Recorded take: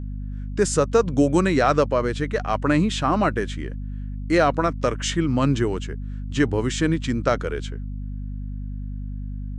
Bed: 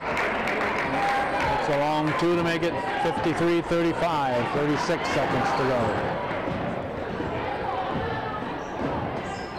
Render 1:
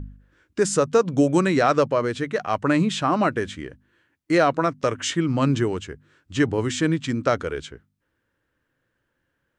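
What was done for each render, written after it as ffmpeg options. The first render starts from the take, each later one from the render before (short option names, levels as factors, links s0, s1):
-af "bandreject=f=50:t=h:w=4,bandreject=f=100:t=h:w=4,bandreject=f=150:t=h:w=4,bandreject=f=200:t=h:w=4,bandreject=f=250:t=h:w=4"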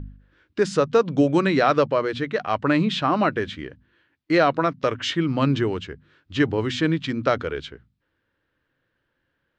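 -af "highshelf=f=5800:t=q:w=1.5:g=-12.5,bandreject=f=60:t=h:w=6,bandreject=f=120:t=h:w=6,bandreject=f=180:t=h:w=6,bandreject=f=240:t=h:w=6"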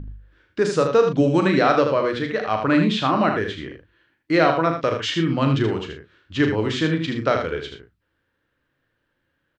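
-filter_complex "[0:a]asplit=2[s0][s1];[s1]adelay=37,volume=0.398[s2];[s0][s2]amix=inputs=2:normalize=0,asplit=2[s3][s4];[s4]aecho=0:1:78:0.473[s5];[s3][s5]amix=inputs=2:normalize=0"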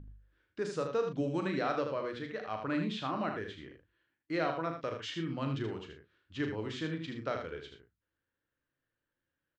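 -af "volume=0.168"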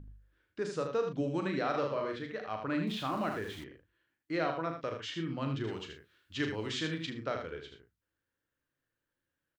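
-filter_complex "[0:a]asplit=3[s0][s1][s2];[s0]afade=t=out:st=1.73:d=0.02[s3];[s1]asplit=2[s4][s5];[s5]adelay=42,volume=0.668[s6];[s4][s6]amix=inputs=2:normalize=0,afade=t=in:st=1.73:d=0.02,afade=t=out:st=2.15:d=0.02[s7];[s2]afade=t=in:st=2.15:d=0.02[s8];[s3][s7][s8]amix=inputs=3:normalize=0,asettb=1/sr,asplit=3[s9][s10][s11];[s9]atrim=end=2.874[s12];[s10]atrim=start=2.87:end=3.64,asetpts=PTS-STARTPTS,afade=t=in:d=0.004:c=qsin,afade=t=out:st=0.766:d=0.004:c=qsin,aeval=exprs='val(0)+0.5*0.00501*sgn(val(0))':c=same[s13];[s11]atrim=start=3.636[s14];[s12][s13]acrossfade=d=0.004:c1=hsin:c2=qsin[s15];[s15][s14]acrossfade=d=0.004:c1=qsin:c2=hsin,asettb=1/sr,asplit=3[s16][s17][s18];[s16]atrim=end=5.674[s19];[s17]atrim=start=5.67:end=7.1,asetpts=PTS-STARTPTS,afade=t=in:d=0.004:c=qsin,afade=t=out:st=1.426:d=0.004:c=qsin,highshelf=f=2400:g=11[s20];[s18]atrim=start=7.096[s21];[s19][s20]acrossfade=d=0.004:c1=hsin:c2=qsin[s22];[s22][s21]acrossfade=d=0.004:c1=qsin:c2=hsin"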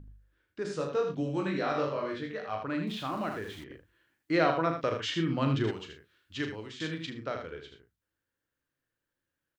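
-filter_complex "[0:a]asettb=1/sr,asplit=3[s0][s1][s2];[s0]atrim=end=0.634[s3];[s1]atrim=start=0.63:end=2.63,asetpts=PTS-STARTPTS,afade=t=in:d=0.004:c=qsin,afade=t=out:st=1.996:d=0.004:c=qsin,asplit=2[s4][s5];[s5]adelay=20,volume=0.75[s6];[s4][s6]amix=inputs=2:normalize=0,atrim=end_sample=88200[s7];[s2]atrim=start=2.626[s8];[s3][s7]acrossfade=d=0.004:c1=hsin:c2=qsin[s9];[s9][s8]acrossfade=d=0.004:c1=qsin:c2=hsin,asplit=4[s10][s11][s12][s13];[s10]atrim=end=3.702[s14];[s11]atrim=start=3.698:end=5.712,asetpts=PTS-STARTPTS,volume=2.24[s15];[s12]atrim=start=5.708:end=6.8,asetpts=PTS-STARTPTS,afade=t=out:st=0.692:d=0.4:silence=0.237137[s16];[s13]atrim=start=6.8,asetpts=PTS-STARTPTS,afade=t=in:d=0.004:c=hsin:silence=0.237137[s17];[s14][s15]acrossfade=d=0.004:c1=hsin:c2=hsin[s18];[s16][s17]concat=n=2:v=0:a=1[s19];[s18][s19]acrossfade=d=0.004:c1=hsin:c2=hsin"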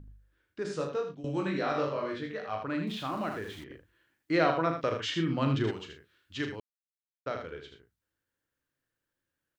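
-filter_complex "[0:a]asplit=4[s0][s1][s2][s3];[s0]atrim=end=1.24,asetpts=PTS-STARTPTS,afade=t=out:st=0.84:d=0.4:silence=0.158489[s4];[s1]atrim=start=1.24:end=6.6,asetpts=PTS-STARTPTS,afade=t=in:d=0.004:c=hsin:silence=0.158489,afade=t=out:st=5.356:d=0.004:c=hsin[s5];[s2]atrim=start=6.6:end=7.26,asetpts=PTS-STARTPTS,volume=0[s6];[s3]atrim=start=7.26,asetpts=PTS-STARTPTS,afade=t=in:d=0.004:c=hsin[s7];[s4][s5][s6][s7]concat=n=4:v=0:a=1"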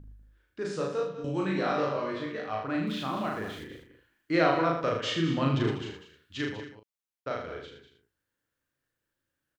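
-filter_complex "[0:a]asplit=2[s0][s1];[s1]adelay=37,volume=0.447[s2];[s0][s2]amix=inputs=2:normalize=0,aecho=1:1:195:0.266"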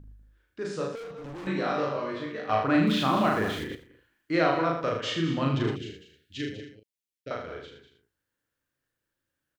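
-filter_complex "[0:a]asettb=1/sr,asplit=3[s0][s1][s2];[s0]atrim=end=0.954[s3];[s1]atrim=start=0.95:end=1.47,asetpts=PTS-STARTPTS,afade=t=in:d=0.004:c=qsin,afade=t=out:st=0.516:d=0.004:c=qsin,asoftclip=type=hard:threshold=0.0126[s4];[s2]atrim=start=1.466[s5];[s3][s4]acrossfade=d=0.004:c1=hsin:c2=qsin[s6];[s6][s5]acrossfade=d=0.004:c1=qsin:c2=hsin,asettb=1/sr,asplit=3[s7][s8][s9];[s7]atrim=end=5.764[s10];[s8]atrim=start=5.76:end=7.31,asetpts=PTS-STARTPTS,afade=t=in:d=0.004:c=qsin,afade=t=out:st=1.546:d=0.004:c=qsin,asuperstop=centerf=1000:order=4:qfactor=0.71[s11];[s9]atrim=start=7.306[s12];[s10][s11]acrossfade=d=0.004:c1=hsin:c2=qsin[s13];[s13][s12]acrossfade=d=0.004:c1=qsin:c2=hsin,asplit=3[s14][s15][s16];[s14]atrim=end=2.492[s17];[s15]atrim=start=2.488:end=3.752,asetpts=PTS-STARTPTS,volume=2.51[s18];[s16]atrim=start=3.748[s19];[s17][s18]acrossfade=d=0.004:c1=hsin:c2=hsin[s20];[s20][s19]acrossfade=d=0.004:c1=hsin:c2=hsin"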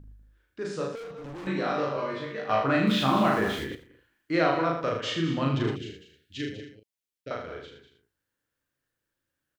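-filter_complex "[0:a]asettb=1/sr,asplit=3[s0][s1][s2];[s0]atrim=end=1.964[s3];[s1]atrim=start=1.96:end=3.7,asetpts=PTS-STARTPTS,afade=t=in:d=0.004:c=qsin,afade=t=out:st=1.736:d=0.004:c=qsin,asplit=2[s4][s5];[s5]adelay=15,volume=0.562[s6];[s4][s6]amix=inputs=2:normalize=0,atrim=end_sample=76734[s7];[s2]atrim=start=3.696[s8];[s3][s7]acrossfade=d=0.004:c1=hsin:c2=qsin[s9];[s9][s8]acrossfade=d=0.004:c1=qsin:c2=hsin"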